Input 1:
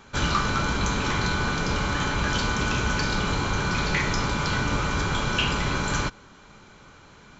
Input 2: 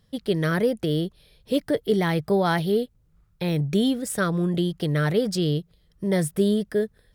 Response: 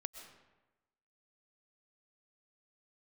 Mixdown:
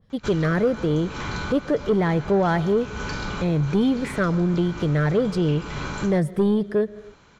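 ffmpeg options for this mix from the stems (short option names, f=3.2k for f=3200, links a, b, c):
-filter_complex "[0:a]crystalizer=i=3:c=0,adelay=100,volume=-4.5dB[a];[1:a]volume=0.5dB,asplit=3[b][c][d];[c]volume=-7.5dB[e];[d]apad=whole_len=330737[f];[a][f]sidechaincompress=threshold=-31dB:ratio=4:attack=31:release=286[g];[2:a]atrim=start_sample=2205[h];[e][h]afir=irnorm=-1:irlink=0[i];[g][b][i]amix=inputs=3:normalize=0,aemphasis=mode=reproduction:type=75fm,asoftclip=type=tanh:threshold=-12.5dB,adynamicequalizer=threshold=0.0141:dfrequency=2200:dqfactor=0.7:tfrequency=2200:tqfactor=0.7:attack=5:release=100:ratio=0.375:range=2:mode=cutabove:tftype=highshelf"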